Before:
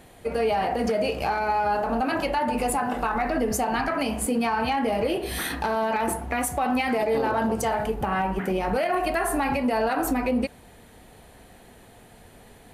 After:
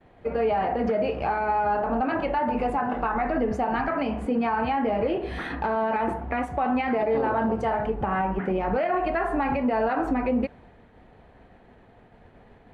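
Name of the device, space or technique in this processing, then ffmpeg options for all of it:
hearing-loss simulation: -filter_complex "[0:a]asettb=1/sr,asplit=3[s0][s1][s2];[s0]atrim=end=1.844[s3];[s1]atrim=start=1.84:end=2.36,asetpts=PTS-STARTPTS,afade=t=in:d=0.004:c=qsin,afade=t=out:st=0.516:d=0.004:c=qsin,bandreject=f=5300:w=7.7[s4];[s2]atrim=start=2.356[s5];[s3][s4]acrossfade=d=0.004:c1=hsin:c2=qsin[s6];[s6][s5]acrossfade=d=0.004:c1=qsin:c2=hsin,lowpass=2000,agate=range=0.0224:threshold=0.00447:ratio=3:detection=peak"

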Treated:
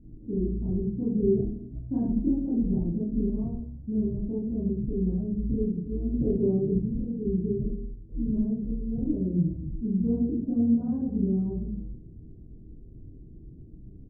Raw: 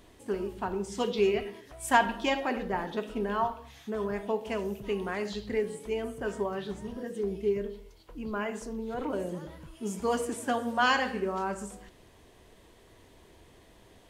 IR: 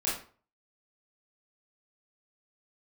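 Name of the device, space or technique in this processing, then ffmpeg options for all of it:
next room: -filter_complex "[0:a]lowpass=f=250:w=0.5412,lowpass=f=250:w=1.3066[s0];[1:a]atrim=start_sample=2205[s1];[s0][s1]afir=irnorm=-1:irlink=0,asettb=1/sr,asplit=3[s2][s3][s4];[s2]atrim=end=6.144[s5];[s3]atrim=start=6.14:end=6.8,asetpts=PTS-STARTPTS,afade=t=in:d=0.004:c=qsin,afade=t=out:st=0.656:d=0.004:c=qsin,equalizer=f=440:w=0.76:g=9[s6];[s4]atrim=start=6.796[s7];[s5][s6]acrossfade=d=0.004:c1=hsin:c2=qsin[s8];[s8][s7]acrossfade=d=0.004:c1=qsin:c2=hsin,asplit=5[s9][s10][s11][s12][s13];[s10]adelay=159,afreqshift=-72,volume=0.0891[s14];[s11]adelay=318,afreqshift=-144,volume=0.0501[s15];[s12]adelay=477,afreqshift=-216,volume=0.0279[s16];[s13]adelay=636,afreqshift=-288,volume=0.0157[s17];[s9][s14][s15][s16][s17]amix=inputs=5:normalize=0,volume=2.51"

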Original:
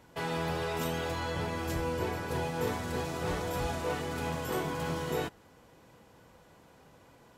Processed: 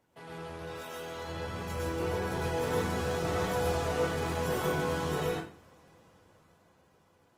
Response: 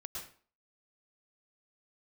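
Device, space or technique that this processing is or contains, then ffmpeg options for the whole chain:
far-field microphone of a smart speaker: -filter_complex "[0:a]asettb=1/sr,asplit=3[s0][s1][s2];[s0]atrim=end=0.634[s3];[s1]atrim=start=0.63:end=1.16,asetpts=PTS-STARTPTS,afade=t=in:d=0.004:c=qsin,afade=t=out:st=0.526:d=0.004:c=qsin,highpass=f=290:p=1[s4];[s2]atrim=start=1.156[s5];[s3][s4]acrossfade=d=0.004:c1=hsin:c2=qsin[s6];[s6][s5]acrossfade=d=0.004:c1=qsin:c2=hsin[s7];[1:a]atrim=start_sample=2205[s8];[s7][s8]afir=irnorm=-1:irlink=0,highpass=87,dynaudnorm=f=210:g=17:m=3.35,volume=0.473" -ar 48000 -c:a libopus -b:a 24k

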